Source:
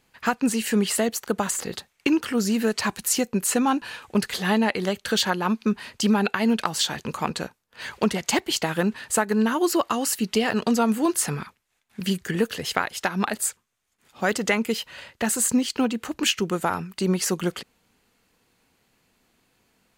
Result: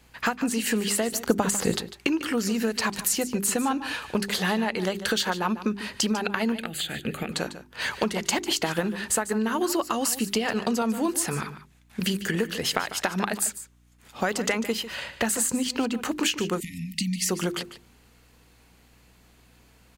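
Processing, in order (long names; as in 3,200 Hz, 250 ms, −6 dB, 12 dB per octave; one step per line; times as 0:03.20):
mains-hum notches 50/100/150/200/250/300/350/400 Hz
downward compressor, threshold −29 dBFS, peak gain reduction 13 dB
0:01.12–0:01.77: low-shelf EQ 440 Hz +9 dB
0:06.52–0:07.32: phaser with its sweep stopped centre 2,400 Hz, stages 4
single-tap delay 148 ms −13.5 dB
mains hum 60 Hz, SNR 32 dB
0:16.60–0:17.29: linear-phase brick-wall band-stop 300–1,800 Hz
dynamic equaliser 110 Hz, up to −3 dB, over −46 dBFS, Q 1
level +6.5 dB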